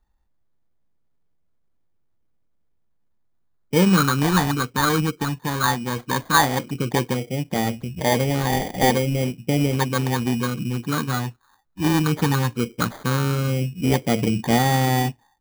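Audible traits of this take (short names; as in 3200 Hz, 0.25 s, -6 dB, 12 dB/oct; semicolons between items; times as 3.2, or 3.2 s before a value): phasing stages 6, 0.15 Hz, lowest notch 570–1300 Hz; aliases and images of a low sample rate 2700 Hz, jitter 0%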